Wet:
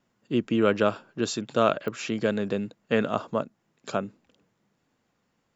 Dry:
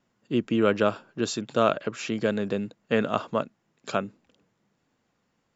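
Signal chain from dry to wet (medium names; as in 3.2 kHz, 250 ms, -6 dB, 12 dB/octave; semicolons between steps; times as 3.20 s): 3.13–4.03 s: dynamic bell 2.5 kHz, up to -6 dB, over -43 dBFS, Q 0.72; clicks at 1.88 s, -22 dBFS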